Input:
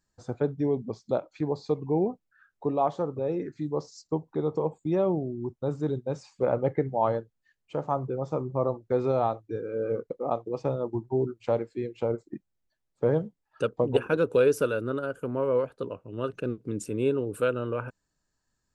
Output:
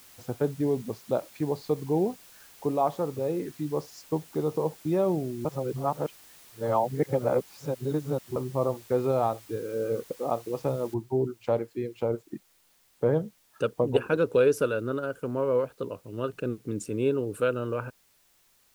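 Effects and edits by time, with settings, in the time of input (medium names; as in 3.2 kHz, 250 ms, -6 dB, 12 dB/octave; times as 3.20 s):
5.45–8.36 s: reverse
10.94 s: noise floor step -53 dB -65 dB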